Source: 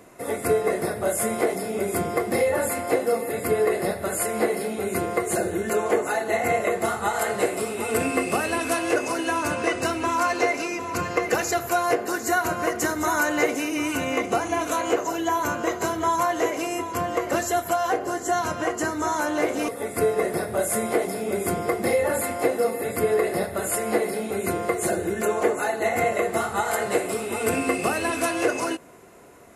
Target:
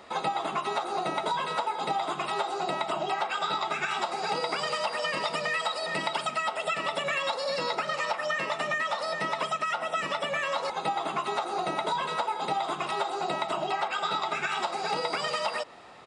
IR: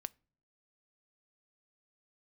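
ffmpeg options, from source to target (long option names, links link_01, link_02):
-af "aresample=11025,aresample=44100,asetrate=81144,aresample=44100,acompressor=threshold=-27dB:ratio=4"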